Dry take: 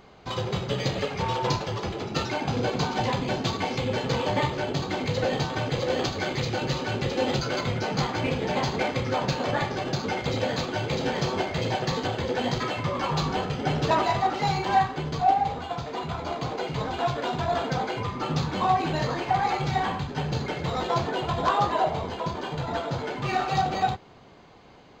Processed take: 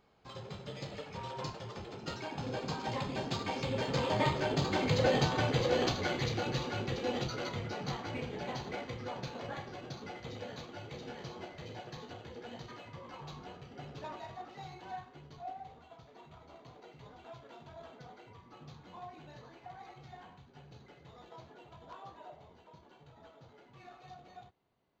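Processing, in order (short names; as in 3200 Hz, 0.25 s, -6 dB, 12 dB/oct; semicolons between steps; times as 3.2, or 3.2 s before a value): Doppler pass-by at 5.12, 14 m/s, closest 13 m; gain -2 dB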